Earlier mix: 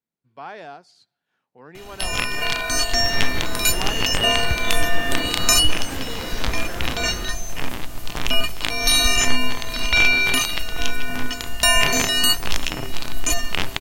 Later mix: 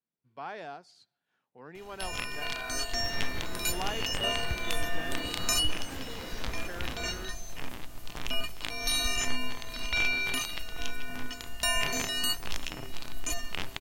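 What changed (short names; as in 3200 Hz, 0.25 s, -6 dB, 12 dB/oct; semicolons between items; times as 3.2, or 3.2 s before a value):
speech -4.0 dB; first sound -12.0 dB; second sound -10.0 dB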